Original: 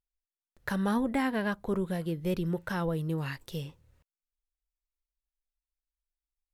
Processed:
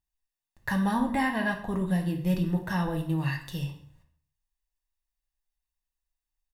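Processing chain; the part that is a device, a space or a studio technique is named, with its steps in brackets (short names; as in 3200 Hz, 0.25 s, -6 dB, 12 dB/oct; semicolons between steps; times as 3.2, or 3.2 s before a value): microphone above a desk (comb 1.1 ms, depth 58%; reverb RT60 0.55 s, pre-delay 3 ms, DRR 2 dB)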